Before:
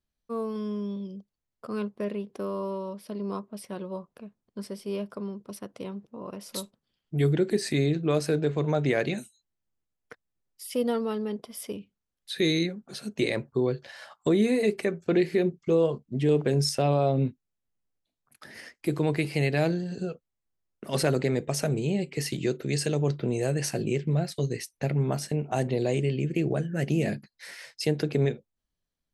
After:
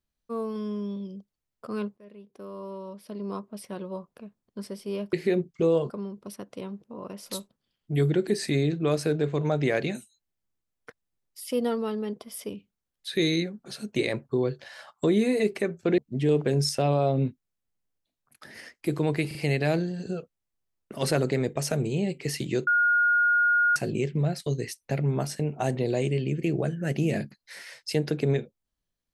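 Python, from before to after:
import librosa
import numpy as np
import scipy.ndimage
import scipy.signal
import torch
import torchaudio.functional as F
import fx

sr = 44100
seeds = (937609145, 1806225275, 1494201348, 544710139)

y = fx.edit(x, sr, fx.fade_in_from(start_s=1.97, length_s=1.52, floor_db=-24.0),
    fx.move(start_s=15.21, length_s=0.77, to_s=5.13),
    fx.stutter(start_s=19.27, slice_s=0.04, count=3),
    fx.bleep(start_s=22.59, length_s=1.09, hz=1430.0, db=-18.5), tone=tone)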